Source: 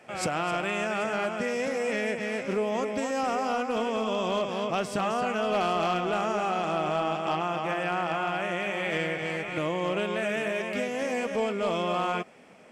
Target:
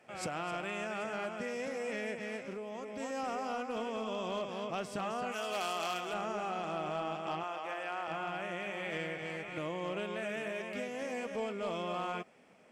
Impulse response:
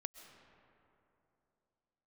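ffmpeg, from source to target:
-filter_complex "[0:a]asettb=1/sr,asplit=3[a][b][c];[a]atrim=end=2.364[d];[b]atrim=start=2.36:end=3,asetpts=PTS-STARTPTS,afade=t=in:d=0.004:c=qsin,afade=t=out:st=0.636:d=0.004:c=qsin,acompressor=threshold=-30dB:ratio=6[e];[c]atrim=start=2.996[f];[d][e]acrossfade=d=0.004:c1=hsin:c2=qsin[g];[g][f]acrossfade=d=0.004:c1=qsin:c2=hsin,asplit=3[h][i][j];[h]afade=t=out:st=5.31:d=0.02[k];[i]aemphasis=mode=production:type=riaa,afade=t=in:st=5.31:d=0.02,afade=t=out:st=6.12:d=0.02[l];[j]afade=t=in:st=6.12:d=0.02[m];[k][l][m]amix=inputs=3:normalize=0,asettb=1/sr,asplit=3[n][o][p];[n]atrim=end=7.434[q];[o]atrim=start=7.43:end=8.08,asetpts=PTS-STARTPTS,afade=t=in:d=0.004:c=qsin,afade=t=out:st=0.646:d=0.004:c=qsin,highpass=430[r];[p]atrim=start=8.076[s];[q][r]acrossfade=d=0.004:c1=hsin:c2=qsin[t];[t][s]acrossfade=d=0.004:c1=qsin:c2=hsin,volume=-9dB"

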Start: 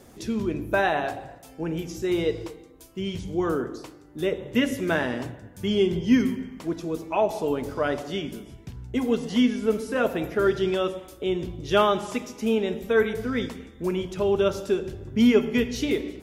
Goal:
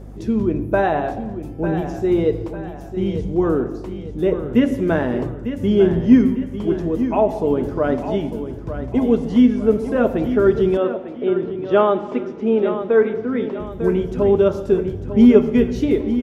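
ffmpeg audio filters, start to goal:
-filter_complex "[0:a]tiltshelf=f=1.5k:g=8.5,aecho=1:1:899|1798|2697|3596:0.299|0.122|0.0502|0.0206,aeval=exprs='val(0)+0.0158*(sin(2*PI*50*n/s)+sin(2*PI*2*50*n/s)/2+sin(2*PI*3*50*n/s)/3+sin(2*PI*4*50*n/s)/4+sin(2*PI*5*50*n/s)/5)':c=same,asettb=1/sr,asplit=3[a][b][c];[a]atrim=end=10.774[d];[b]atrim=start=10.77:end=13.6,asetpts=PTS-STARTPTS,afade=t=in:d=0.004:c=qsin,afade=t=out:st=2.826:d=0.004:c=qsin,highpass=230,lowpass=3.3k[e];[c]atrim=start=13.596[f];[d][e]acrossfade=d=0.004:c1=hsin:c2=qsin[g];[g][f]acrossfade=d=0.004:c1=qsin:c2=hsin"

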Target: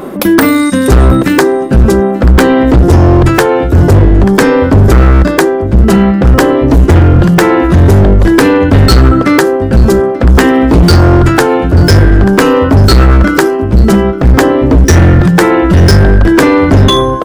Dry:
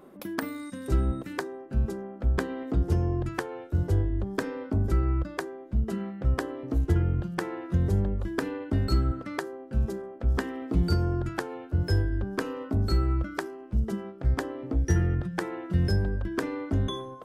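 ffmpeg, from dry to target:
-af "aecho=1:1:886:0.1,volume=26dB,asoftclip=hard,volume=-26dB,apsyclip=31dB,volume=-1.5dB"

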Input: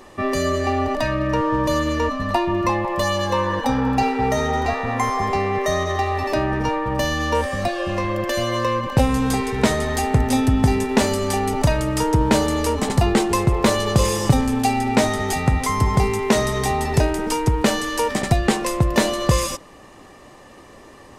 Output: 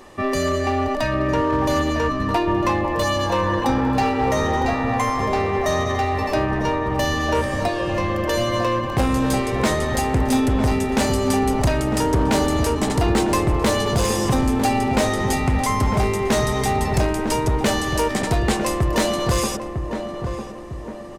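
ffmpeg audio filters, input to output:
-filter_complex "[0:a]volume=14.5dB,asoftclip=hard,volume=-14.5dB,asplit=2[a][b];[b]adelay=952,lowpass=f=1.1k:p=1,volume=-6dB,asplit=2[c][d];[d]adelay=952,lowpass=f=1.1k:p=1,volume=0.51,asplit=2[e][f];[f]adelay=952,lowpass=f=1.1k:p=1,volume=0.51,asplit=2[g][h];[h]adelay=952,lowpass=f=1.1k:p=1,volume=0.51,asplit=2[i][j];[j]adelay=952,lowpass=f=1.1k:p=1,volume=0.51,asplit=2[k][l];[l]adelay=952,lowpass=f=1.1k:p=1,volume=0.51[m];[a][c][e][g][i][k][m]amix=inputs=7:normalize=0"

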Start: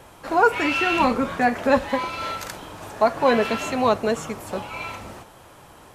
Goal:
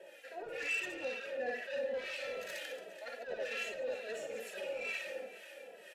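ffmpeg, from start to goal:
-filter_complex "[0:a]areverse,acompressor=threshold=-30dB:ratio=5,areverse,aemphasis=mode=production:type=riaa,asplit=2[a][b];[b]aecho=0:1:60|150|285|487.5|791.2:0.631|0.398|0.251|0.158|0.1[c];[a][c]amix=inputs=2:normalize=0,acontrast=55,asplit=3[d][e][f];[d]bandpass=f=530:t=q:w=8,volume=0dB[g];[e]bandpass=f=1.84k:t=q:w=8,volume=-6dB[h];[f]bandpass=f=2.48k:t=q:w=8,volume=-9dB[i];[g][h][i]amix=inputs=3:normalize=0,lowshelf=f=150:t=q:w=3:g=-6,asoftclip=type=tanh:threshold=-33dB,acrossover=split=1000[j][k];[j]aeval=exprs='val(0)*(1-0.7/2+0.7/2*cos(2*PI*2.1*n/s))':c=same[l];[k]aeval=exprs='val(0)*(1-0.7/2-0.7/2*cos(2*PI*2.1*n/s))':c=same[m];[l][m]amix=inputs=2:normalize=0,asplit=2[n][o];[o]adelay=2.7,afreqshift=-2.4[p];[n][p]amix=inputs=2:normalize=1,volume=5dB"

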